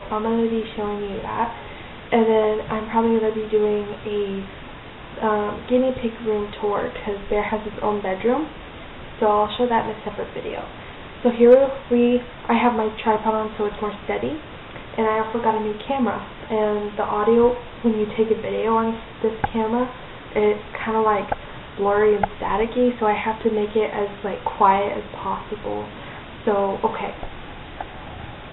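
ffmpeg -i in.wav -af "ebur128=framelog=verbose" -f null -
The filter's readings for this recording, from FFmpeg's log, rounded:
Integrated loudness:
  I:         -21.9 LUFS
  Threshold: -32.4 LUFS
Loudness range:
  LRA:         4.9 LU
  Threshold: -42.2 LUFS
  LRA low:   -24.4 LUFS
  LRA high:  -19.5 LUFS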